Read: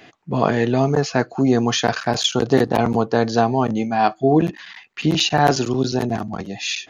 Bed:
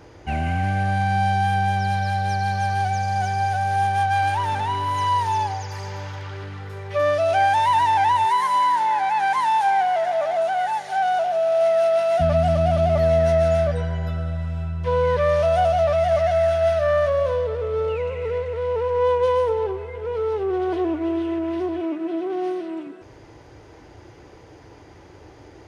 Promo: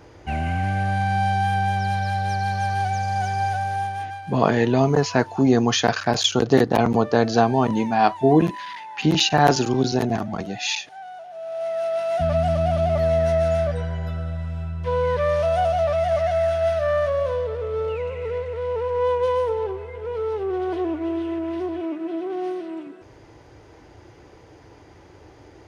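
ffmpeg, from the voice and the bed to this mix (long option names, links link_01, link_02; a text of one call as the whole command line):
ffmpeg -i stem1.wav -i stem2.wav -filter_complex "[0:a]adelay=4000,volume=-0.5dB[link_01];[1:a]volume=14.5dB,afade=type=out:start_time=3.49:duration=0.73:silence=0.149624,afade=type=in:start_time=11.29:duration=1.06:silence=0.16788[link_02];[link_01][link_02]amix=inputs=2:normalize=0" out.wav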